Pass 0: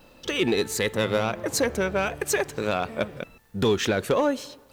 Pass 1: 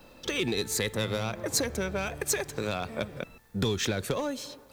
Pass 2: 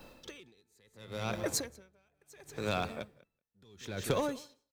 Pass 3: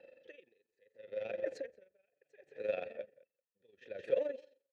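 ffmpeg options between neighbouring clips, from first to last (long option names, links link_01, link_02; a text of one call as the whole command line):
ffmpeg -i in.wav -filter_complex "[0:a]bandreject=frequency=2900:width=13,acrossover=split=160|3000[link_01][link_02][link_03];[link_02]acompressor=threshold=-30dB:ratio=4[link_04];[link_01][link_04][link_03]amix=inputs=3:normalize=0" out.wav
ffmpeg -i in.wav -af "aecho=1:1:184:0.211,aeval=exprs='val(0)*pow(10,-40*(0.5-0.5*cos(2*PI*0.72*n/s))/20)':channel_layout=same" out.wav
ffmpeg -i in.wav -filter_complex "[0:a]tremolo=f=23:d=0.71,asplit=3[link_01][link_02][link_03];[link_01]bandpass=frequency=530:width_type=q:width=8,volume=0dB[link_04];[link_02]bandpass=frequency=1840:width_type=q:width=8,volume=-6dB[link_05];[link_03]bandpass=frequency=2480:width_type=q:width=8,volume=-9dB[link_06];[link_04][link_05][link_06]amix=inputs=3:normalize=0,aemphasis=mode=reproduction:type=50fm,volume=7.5dB" out.wav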